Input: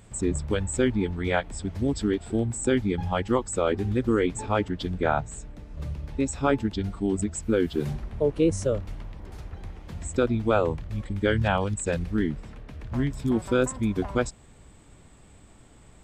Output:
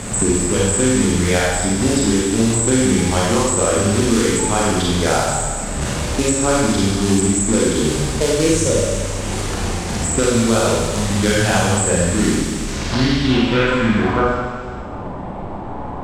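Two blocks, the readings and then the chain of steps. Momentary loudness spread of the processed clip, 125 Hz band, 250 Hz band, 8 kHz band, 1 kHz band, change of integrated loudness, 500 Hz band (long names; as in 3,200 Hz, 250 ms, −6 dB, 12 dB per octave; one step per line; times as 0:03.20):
8 LU, +9.5 dB, +10.0 dB, +18.5 dB, +10.0 dB, +10.0 dB, +8.0 dB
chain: in parallel at +2 dB: brickwall limiter −19 dBFS, peak gain reduction 10.5 dB
on the sum: log-companded quantiser 4 bits
low-pass filter sweep 8,100 Hz → 880 Hz, 0:12.49–0:14.43
on a send: delay with a high-pass on its return 153 ms, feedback 53%, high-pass 4,000 Hz, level −12 dB
on the sum: four-comb reverb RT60 1.1 s, combs from 31 ms, DRR −6 dB
multiband upward and downward compressor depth 70%
level −3.5 dB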